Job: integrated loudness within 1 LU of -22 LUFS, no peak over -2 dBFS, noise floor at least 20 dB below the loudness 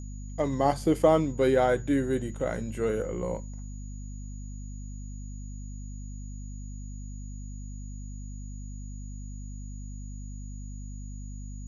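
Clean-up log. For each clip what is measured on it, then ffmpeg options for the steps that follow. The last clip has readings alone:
hum 50 Hz; harmonics up to 250 Hz; hum level -36 dBFS; steady tone 6800 Hz; tone level -53 dBFS; loudness -32.0 LUFS; peak -8.5 dBFS; loudness target -22.0 LUFS
-> -af "bandreject=f=50:t=h:w=6,bandreject=f=100:t=h:w=6,bandreject=f=150:t=h:w=6,bandreject=f=200:t=h:w=6,bandreject=f=250:t=h:w=6"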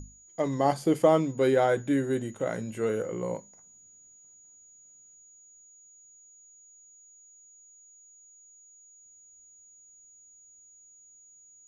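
hum none; steady tone 6800 Hz; tone level -53 dBFS
-> -af "bandreject=f=6.8k:w=30"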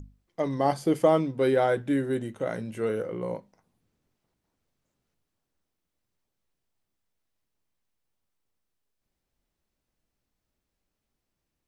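steady tone none; loudness -27.0 LUFS; peak -9.0 dBFS; loudness target -22.0 LUFS
-> -af "volume=5dB"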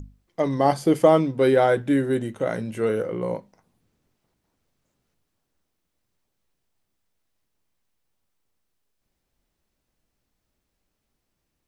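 loudness -22.0 LUFS; peak -4.0 dBFS; noise floor -78 dBFS

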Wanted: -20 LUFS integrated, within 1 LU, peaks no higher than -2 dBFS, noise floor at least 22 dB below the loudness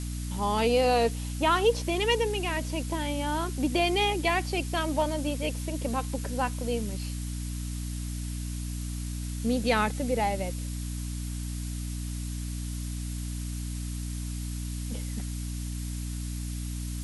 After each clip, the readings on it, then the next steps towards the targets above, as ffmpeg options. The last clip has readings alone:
hum 60 Hz; harmonics up to 300 Hz; hum level -31 dBFS; noise floor -34 dBFS; noise floor target -52 dBFS; loudness -30.0 LUFS; peak -11.5 dBFS; loudness target -20.0 LUFS
-> -af "bandreject=f=60:t=h:w=4,bandreject=f=120:t=h:w=4,bandreject=f=180:t=h:w=4,bandreject=f=240:t=h:w=4,bandreject=f=300:t=h:w=4"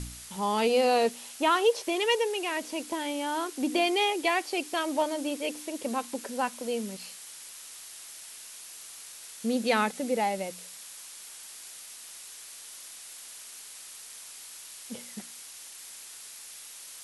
hum none; noise floor -46 dBFS; noise floor target -51 dBFS
-> -af "afftdn=nr=6:nf=-46"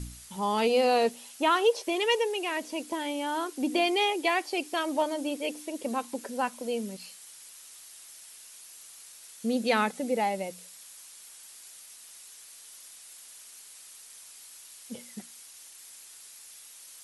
noise floor -50 dBFS; noise floor target -51 dBFS
-> -af "afftdn=nr=6:nf=-50"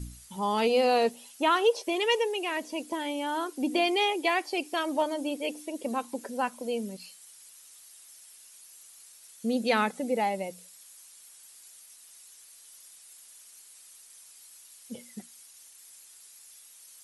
noise floor -53 dBFS; loudness -28.5 LUFS; peak -13.0 dBFS; loudness target -20.0 LUFS
-> -af "volume=8.5dB"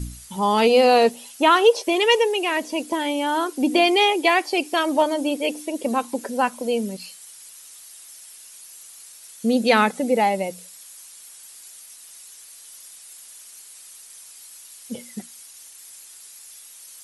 loudness -20.0 LUFS; peak -4.5 dBFS; noise floor -45 dBFS

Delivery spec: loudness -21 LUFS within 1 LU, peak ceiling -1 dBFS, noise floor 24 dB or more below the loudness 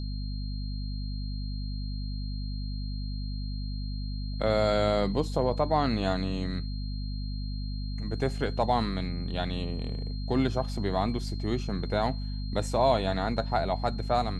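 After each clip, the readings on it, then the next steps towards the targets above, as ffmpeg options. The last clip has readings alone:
hum 50 Hz; harmonics up to 250 Hz; hum level -31 dBFS; steady tone 4200 Hz; tone level -46 dBFS; loudness -30.5 LUFS; peak -11.5 dBFS; loudness target -21.0 LUFS
-> -af "bandreject=f=50:t=h:w=6,bandreject=f=100:t=h:w=6,bandreject=f=150:t=h:w=6,bandreject=f=200:t=h:w=6,bandreject=f=250:t=h:w=6"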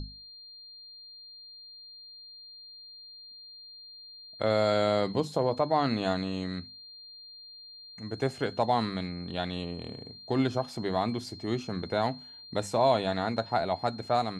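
hum none; steady tone 4200 Hz; tone level -46 dBFS
-> -af "bandreject=f=4.2k:w=30"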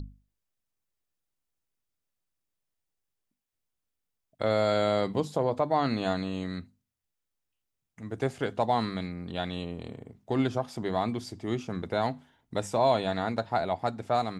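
steady tone none; loudness -30.0 LUFS; peak -12.5 dBFS; loudness target -21.0 LUFS
-> -af "volume=9dB"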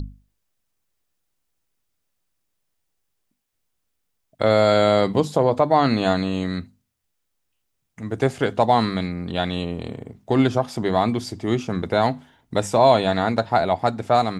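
loudness -21.0 LUFS; peak -3.5 dBFS; noise floor -75 dBFS

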